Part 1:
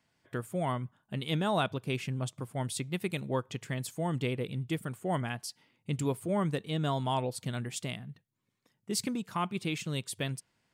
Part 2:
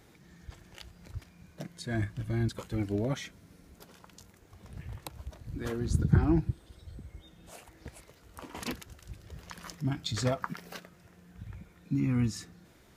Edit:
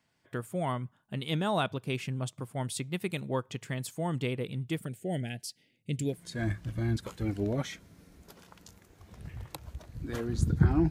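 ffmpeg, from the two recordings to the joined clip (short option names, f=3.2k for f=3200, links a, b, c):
-filter_complex "[0:a]asettb=1/sr,asplit=3[a][b][c];[a]atrim=end=4.864[d];[b]atrim=start=4.86:end=6.25,asetpts=PTS-STARTPTS,afade=t=in:d=0.004:c=qsin,afade=t=out:st=1.386:d=0.004:c=qsin,asuperstop=centerf=1100:order=4:qfactor=0.84[e];[c]atrim=start=6.246[f];[d][e]acrossfade=d=0.004:c1=hsin:c2=qsin[g];[g][f]acrossfade=d=0.004:c1=qsin:c2=hsin,apad=whole_dur=10.9,atrim=end=10.9,atrim=end=6.25,asetpts=PTS-STARTPTS[h];[1:a]atrim=start=1.59:end=6.42,asetpts=PTS-STARTPTS[i];[h][i]acrossfade=d=0.18:c1=tri:c2=tri"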